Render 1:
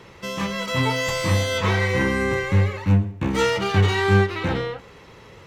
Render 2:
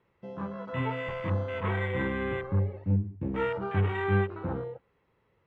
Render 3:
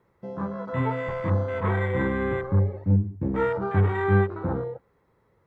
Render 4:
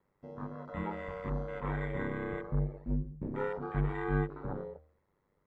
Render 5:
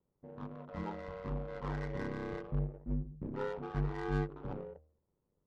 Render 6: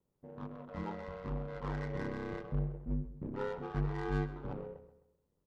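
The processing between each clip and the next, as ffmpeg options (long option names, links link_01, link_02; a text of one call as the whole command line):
ffmpeg -i in.wav -af "lowpass=2400,afwtdn=0.0447,volume=-8.5dB" out.wav
ffmpeg -i in.wav -af "equalizer=frequency=2800:width_type=o:width=0.6:gain=-13,volume=5.5dB" out.wav
ffmpeg -i in.wav -af "aeval=exprs='val(0)*sin(2*PI*49*n/s)':channel_layout=same,bandreject=frequency=76.92:width_type=h:width=4,bandreject=frequency=153.84:width_type=h:width=4,bandreject=frequency=230.76:width_type=h:width=4,bandreject=frequency=307.68:width_type=h:width=4,bandreject=frequency=384.6:width_type=h:width=4,bandreject=frequency=461.52:width_type=h:width=4,bandreject=frequency=538.44:width_type=h:width=4,bandreject=frequency=615.36:width_type=h:width=4,bandreject=frequency=692.28:width_type=h:width=4,bandreject=frequency=769.2:width_type=h:width=4,volume=-7.5dB" out.wav
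ffmpeg -i in.wav -af "adynamicsmooth=sensitivity=7.5:basefreq=700,volume=-3dB" out.wav
ffmpeg -i in.wav -filter_complex "[0:a]asplit=2[link_01][link_02];[link_02]adelay=130,lowpass=frequency=4700:poles=1,volume=-13dB,asplit=2[link_03][link_04];[link_04]adelay=130,lowpass=frequency=4700:poles=1,volume=0.39,asplit=2[link_05][link_06];[link_06]adelay=130,lowpass=frequency=4700:poles=1,volume=0.39,asplit=2[link_07][link_08];[link_08]adelay=130,lowpass=frequency=4700:poles=1,volume=0.39[link_09];[link_01][link_03][link_05][link_07][link_09]amix=inputs=5:normalize=0" out.wav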